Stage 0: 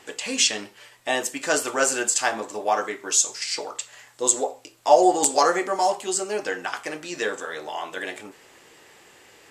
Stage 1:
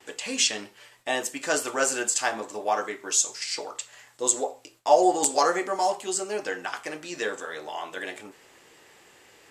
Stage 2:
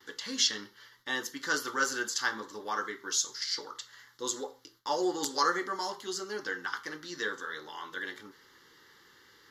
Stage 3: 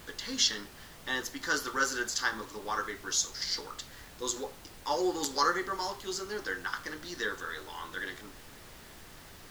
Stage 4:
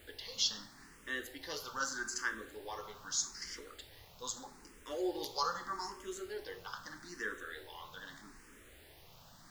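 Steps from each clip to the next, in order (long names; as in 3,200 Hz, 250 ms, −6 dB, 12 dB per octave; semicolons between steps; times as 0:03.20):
noise gate with hold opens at −42 dBFS; level −3 dB
low-shelf EQ 450 Hz −4 dB; phaser with its sweep stopped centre 2,500 Hz, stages 6
background noise pink −51 dBFS
on a send at −11.5 dB: convolution reverb RT60 1.1 s, pre-delay 35 ms; on the sum: frequency shifter mixed with the dry sound +0.8 Hz; level −5 dB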